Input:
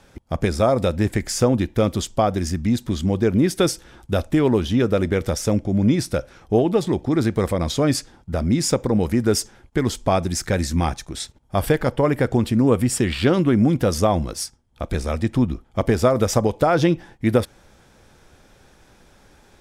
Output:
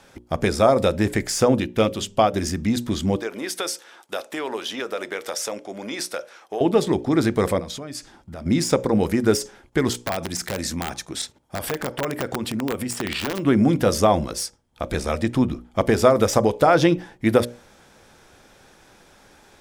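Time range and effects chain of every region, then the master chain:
1.6–2.34 bell 2800 Hz +8 dB 0.47 oct + de-hum 100.2 Hz, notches 4 + upward expander, over -27 dBFS
3.16–6.61 HPF 600 Hz + compressor 2.5:1, threshold -26 dBFS
7.59–8.46 compressor 5:1, threshold -32 dBFS + bell 490 Hz -6 dB 0.21 oct
9.9–13.45 HPF 110 Hz 6 dB/oct + compressor 5:1, threshold -22 dBFS + wrapped overs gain 17.5 dB
whole clip: notches 60/120/180/240/300/360/420/480/540/600 Hz; de-esser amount 45%; low shelf 140 Hz -10 dB; gain +3 dB

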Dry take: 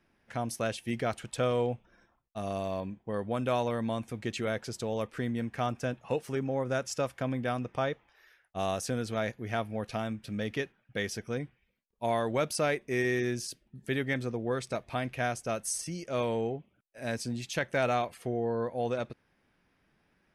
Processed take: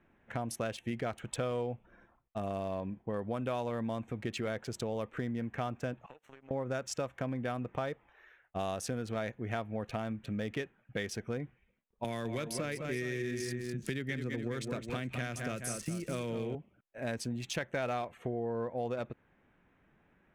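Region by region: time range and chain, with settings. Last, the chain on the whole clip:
6.06–6.51 HPF 1100 Hz 6 dB/oct + compressor 16:1, threshold -45 dBFS + power-law curve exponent 2
12.04–16.55 bell 790 Hz -11.5 dB 1.3 oct + tapped delay 0.207/0.419 s -8/-13 dB + three-band squash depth 70%
whole clip: Wiener smoothing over 9 samples; compressor 3:1, threshold -38 dBFS; gain +3.5 dB

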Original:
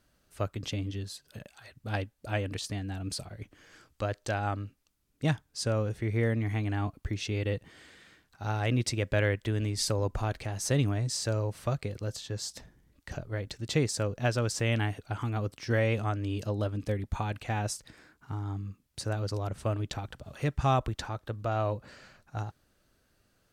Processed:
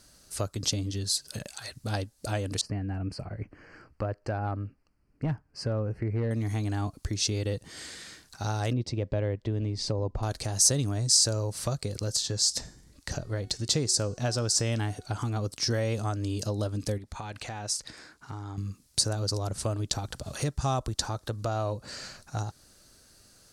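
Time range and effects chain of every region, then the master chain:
2.61–6.31 Butterworth band-stop 3600 Hz, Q 2.1 + overloaded stage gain 23 dB + air absorption 460 m
8.73–10.23 LPF 2000 Hz + bell 1500 Hz -9.5 dB 0.78 oct
12.22–15.45 high shelf 9400 Hz -7 dB + de-hum 368.4 Hz, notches 24
16.98–18.58 LPF 3400 Hz 6 dB/oct + low shelf 380 Hz -6.5 dB + compressor 3:1, threshold -44 dBFS
whole clip: dynamic EQ 2200 Hz, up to -6 dB, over -51 dBFS, Q 1.4; compressor 2:1, threshold -41 dBFS; band shelf 6800 Hz +11.5 dB; gain +8 dB

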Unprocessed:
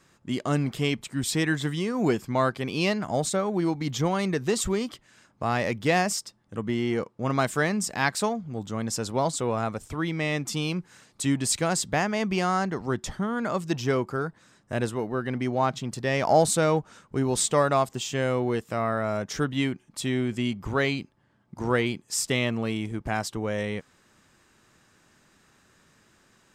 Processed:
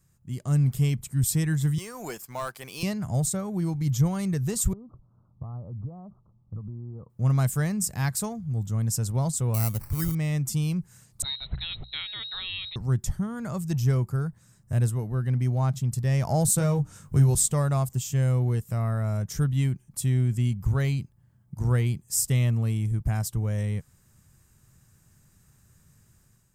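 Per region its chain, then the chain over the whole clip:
1.78–2.83 HPF 600 Hz + sample leveller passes 1
4.73–7.1 steep low-pass 1300 Hz 96 dB/oct + compressor 8:1, threshold -36 dBFS
9.54–10.15 high shelf 7800 Hz +7.5 dB + sample-rate reducer 3400 Hz
11.22–12.76 inverted band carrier 4000 Hz + notches 60/120/180 Hz
16.56–17.35 notches 60/120/180/240/300/360/420 Hz + doubler 21 ms -6 dB + three-band squash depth 70%
whole clip: EQ curve 130 Hz 0 dB, 280 Hz -19 dB, 3600 Hz -21 dB, 13000 Hz +1 dB; AGC gain up to 7 dB; gain +3.5 dB

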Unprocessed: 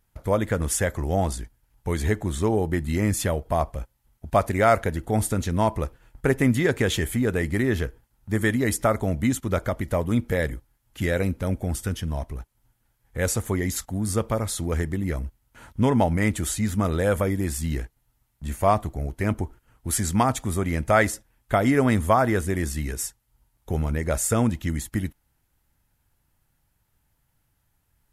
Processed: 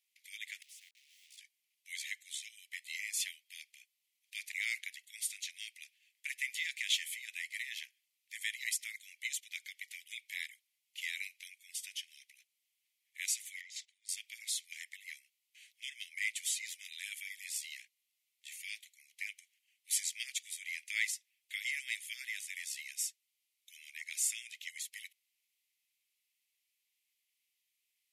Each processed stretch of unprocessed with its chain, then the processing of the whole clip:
0.62–1.38 level-crossing sampler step -34 dBFS + flipped gate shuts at -27 dBFS, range -28 dB + spectral compressor 2:1
13.61–14.09 air absorption 93 m + compressor 4:1, threshold -33 dBFS
whole clip: steep high-pass 2100 Hz 72 dB/oct; high shelf 7400 Hz -11 dB

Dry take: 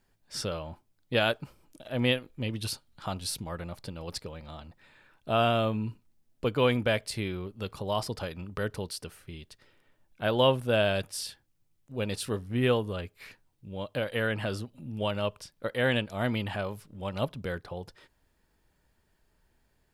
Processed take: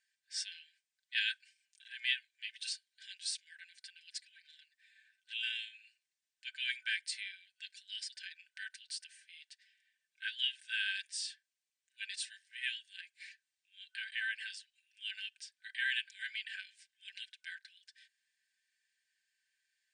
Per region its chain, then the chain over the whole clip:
4.1–5.43 high shelf 11000 Hz +8.5 dB + envelope flanger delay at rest 11.9 ms, full sweep at -25.5 dBFS
whole clip: FFT band-pass 1500–9300 Hz; comb 5.1 ms; gain -4.5 dB

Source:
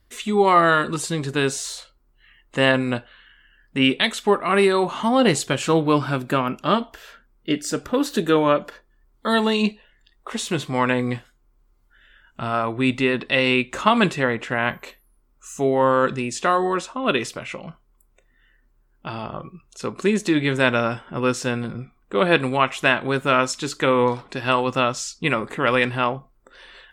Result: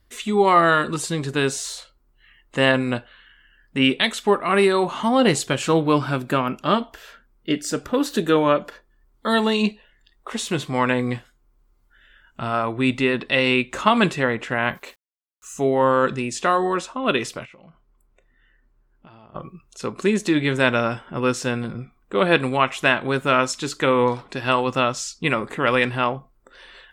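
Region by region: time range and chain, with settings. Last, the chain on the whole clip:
14.75–15.54 low shelf 170 Hz -8 dB + sample gate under -50.5 dBFS
17.45–19.35 high shelf 5800 Hz -12 dB + compressor, threshold -45 dBFS
whole clip: dry

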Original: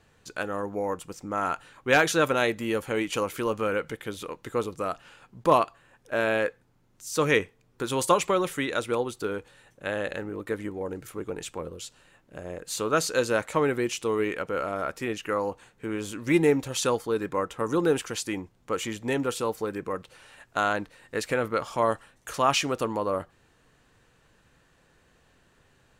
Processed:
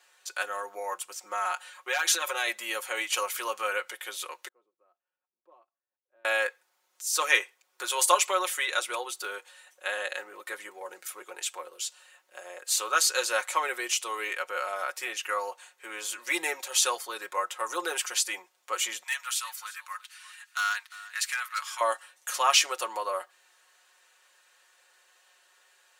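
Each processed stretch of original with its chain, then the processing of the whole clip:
1.22–2.47 comb 5.5 ms, depth 39% + compressor 12:1, threshold -24 dBFS
4.48–6.25 synth low-pass 280 Hz, resonance Q 1.8 + differentiator
19.03–21.81 HPF 1200 Hz 24 dB/oct + hard clip -24.5 dBFS + echo 0.35 s -17.5 dB
whole clip: Bessel high-pass 860 Hz, order 4; high shelf 3700 Hz +7 dB; comb 5.5 ms, depth 70%

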